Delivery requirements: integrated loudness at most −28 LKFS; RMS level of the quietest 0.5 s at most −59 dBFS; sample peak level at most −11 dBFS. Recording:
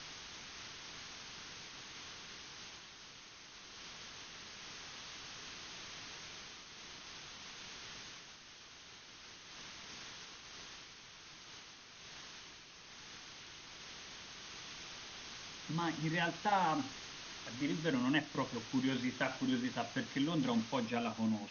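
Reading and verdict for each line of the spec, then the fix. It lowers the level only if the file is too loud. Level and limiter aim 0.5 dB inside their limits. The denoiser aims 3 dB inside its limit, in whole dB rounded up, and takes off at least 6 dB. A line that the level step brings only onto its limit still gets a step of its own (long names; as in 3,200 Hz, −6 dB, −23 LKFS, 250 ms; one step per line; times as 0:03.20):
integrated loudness −41.0 LKFS: in spec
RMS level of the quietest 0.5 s −56 dBFS: out of spec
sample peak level −19.5 dBFS: in spec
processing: broadband denoise 6 dB, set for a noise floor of −56 dBFS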